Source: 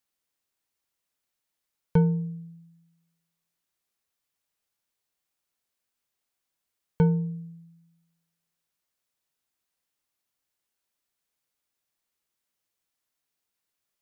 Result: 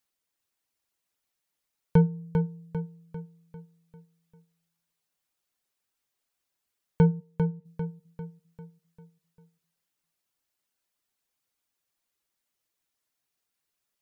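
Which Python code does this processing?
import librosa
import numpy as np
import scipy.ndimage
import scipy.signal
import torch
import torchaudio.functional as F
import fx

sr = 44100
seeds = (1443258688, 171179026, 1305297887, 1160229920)

y = fx.bandpass_edges(x, sr, low_hz=500.0, high_hz=2700.0, at=(7.19, 7.64), fade=0.02)
y = fx.dereverb_blind(y, sr, rt60_s=0.82)
y = fx.echo_feedback(y, sr, ms=397, feedback_pct=47, wet_db=-6)
y = y * 10.0 ** (1.5 / 20.0)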